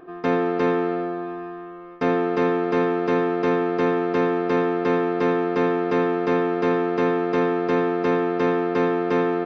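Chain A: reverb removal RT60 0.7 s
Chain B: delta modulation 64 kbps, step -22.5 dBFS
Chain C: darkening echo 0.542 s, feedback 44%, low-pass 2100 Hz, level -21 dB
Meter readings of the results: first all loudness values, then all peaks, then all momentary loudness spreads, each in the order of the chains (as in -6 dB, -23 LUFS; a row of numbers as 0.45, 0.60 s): -24.5, -21.5, -22.5 LUFS; -9.0, -9.0, -9.0 dBFS; 4, 4, 4 LU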